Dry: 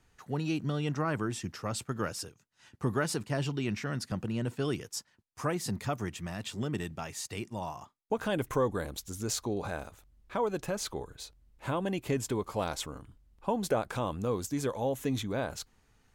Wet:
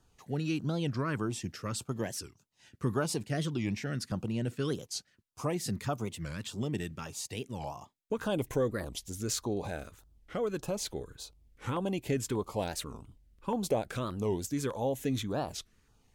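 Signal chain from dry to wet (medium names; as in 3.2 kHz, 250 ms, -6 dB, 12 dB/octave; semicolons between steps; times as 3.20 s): LFO notch saw down 1.7 Hz 620–2300 Hz; warped record 45 rpm, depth 250 cents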